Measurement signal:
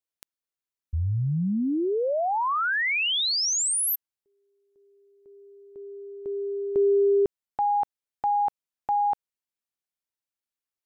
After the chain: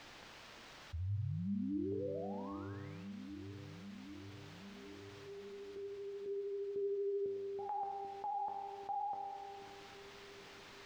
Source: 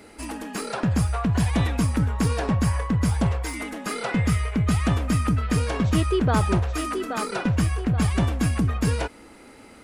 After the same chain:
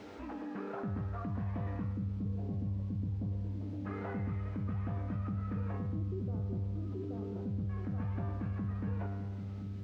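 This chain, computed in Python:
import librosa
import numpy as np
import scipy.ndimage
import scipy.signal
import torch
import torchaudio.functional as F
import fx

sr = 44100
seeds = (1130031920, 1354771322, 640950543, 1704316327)

p1 = scipy.signal.sosfilt(scipy.signal.butter(2, 68.0, 'highpass', fs=sr, output='sos'), x)
p2 = fx.high_shelf(p1, sr, hz=2400.0, db=-8.0)
p3 = fx.rider(p2, sr, range_db=4, speed_s=0.5)
p4 = p2 + F.gain(torch.from_numpy(p3), -2.0).numpy()
p5 = fx.filter_lfo_lowpass(p4, sr, shape='square', hz=0.26, low_hz=390.0, high_hz=1900.0, q=0.78)
p6 = fx.vibrato(p5, sr, rate_hz=13.0, depth_cents=41.0)
p7 = fx.comb_fb(p6, sr, f0_hz=99.0, decay_s=1.5, harmonics='all', damping=0.3, mix_pct=90)
p8 = fx.quant_dither(p7, sr, seeds[0], bits=10, dither='triangular')
p9 = fx.air_absorb(p8, sr, metres=200.0)
p10 = p9 + fx.echo_split(p9, sr, split_hz=340.0, low_ms=787, high_ms=108, feedback_pct=52, wet_db=-14.0, dry=0)
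p11 = fx.env_flatten(p10, sr, amount_pct=50)
y = F.gain(torch.from_numpy(p11), -6.5).numpy()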